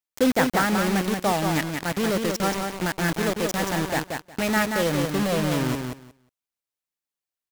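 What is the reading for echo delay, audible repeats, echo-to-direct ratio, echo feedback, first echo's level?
0.18 s, 2, -5.0 dB, 16%, -5.0 dB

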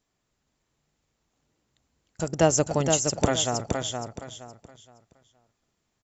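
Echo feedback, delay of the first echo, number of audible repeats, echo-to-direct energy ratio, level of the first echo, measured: 28%, 0.469 s, 3, -4.5 dB, -5.0 dB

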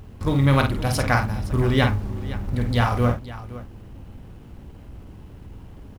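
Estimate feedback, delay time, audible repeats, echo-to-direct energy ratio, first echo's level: no steady repeat, 50 ms, 2, -6.0 dB, -6.5 dB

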